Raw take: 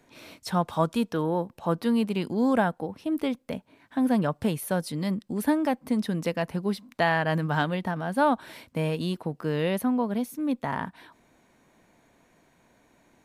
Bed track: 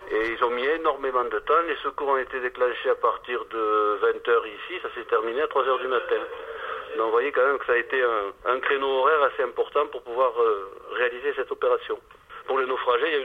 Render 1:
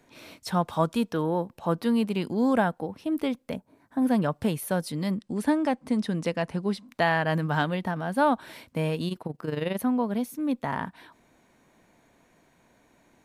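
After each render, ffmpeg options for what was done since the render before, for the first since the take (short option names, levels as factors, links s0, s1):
-filter_complex "[0:a]asettb=1/sr,asplit=3[s0][s1][s2];[s0]atrim=end=3.564[s3];[s1]atrim=start=3.56:end=4.02,asetpts=PTS-STARTPTS,afade=t=in:d=0.004:c=qsin,afade=t=out:st=0.456:d=0.004:c=qsin,equalizer=f=2900:t=o:w=1.4:g=-15[s4];[s2]atrim=start=4.016[s5];[s3][s4]acrossfade=d=0.004:c1=hsin:c2=qsin[s6];[s6][s5]acrossfade=d=0.004:c1=qsin:c2=hsin,asettb=1/sr,asplit=3[s7][s8][s9];[s7]atrim=end=5.174[s10];[s8]atrim=start=5.17:end=6.88,asetpts=PTS-STARTPTS,afade=t=in:d=0.004:c=qsin,afade=t=out:st=1.706:d=0.004:c=qsin,lowpass=f=10000:w=0.5412,lowpass=f=10000:w=1.3066[s11];[s9]atrim=start=6.876[s12];[s10][s11]acrossfade=d=0.004:c1=hsin:c2=qsin[s13];[s13][s12]acrossfade=d=0.004:c1=qsin:c2=hsin,asettb=1/sr,asplit=3[s14][s15][s16];[s14]atrim=end=9.084[s17];[s15]atrim=start=9.08:end=9.79,asetpts=PTS-STARTPTS,afade=t=in:d=0.004:c=qsin,afade=t=out:st=0.706:d=0.004:c=qsin,tremolo=f=22:d=0.71[s18];[s16]atrim=start=9.786[s19];[s17][s18]acrossfade=d=0.004:c1=hsin:c2=qsin[s20];[s20][s19]acrossfade=d=0.004:c1=qsin:c2=hsin"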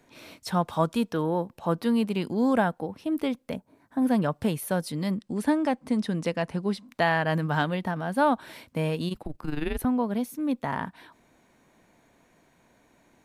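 -filter_complex "[0:a]asettb=1/sr,asplit=3[s0][s1][s2];[s0]atrim=end=9.144[s3];[s1]atrim=start=9.14:end=9.85,asetpts=PTS-STARTPTS,afade=t=in:d=0.004:c=qsin,afade=t=out:st=0.706:d=0.004:c=qsin,afreqshift=-150[s4];[s2]atrim=start=9.846[s5];[s3][s4]acrossfade=d=0.004:c1=hsin:c2=qsin[s6];[s6][s5]acrossfade=d=0.004:c1=qsin:c2=hsin"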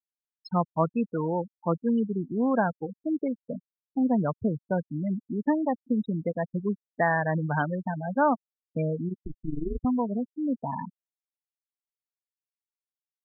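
-af "afftfilt=real='re*gte(hypot(re,im),0.1)':imag='im*gte(hypot(re,im),0.1)':win_size=1024:overlap=0.75,adynamicequalizer=threshold=0.02:dfrequency=320:dqfactor=1.1:tfrequency=320:tqfactor=1.1:attack=5:release=100:ratio=0.375:range=1.5:mode=cutabove:tftype=bell"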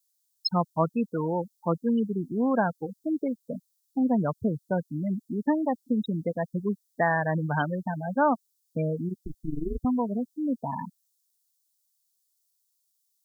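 -af "aexciter=amount=7.9:drive=6.6:freq=3600"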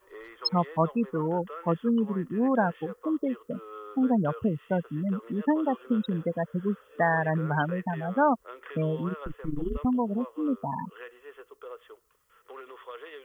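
-filter_complex "[1:a]volume=0.0944[s0];[0:a][s0]amix=inputs=2:normalize=0"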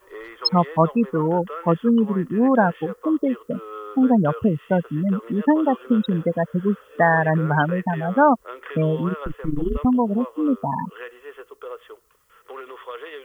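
-af "volume=2.37"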